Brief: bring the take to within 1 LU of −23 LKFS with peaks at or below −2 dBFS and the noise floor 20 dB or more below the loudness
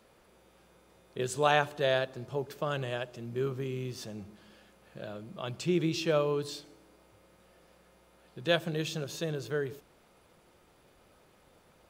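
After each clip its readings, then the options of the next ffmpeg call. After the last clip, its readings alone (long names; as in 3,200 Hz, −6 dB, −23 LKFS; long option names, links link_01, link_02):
integrated loudness −32.5 LKFS; sample peak −10.5 dBFS; target loudness −23.0 LKFS
→ -af "volume=9.5dB,alimiter=limit=-2dB:level=0:latency=1"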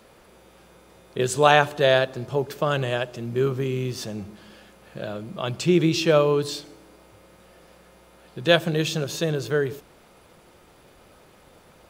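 integrated loudness −23.0 LKFS; sample peak −2.0 dBFS; background noise floor −54 dBFS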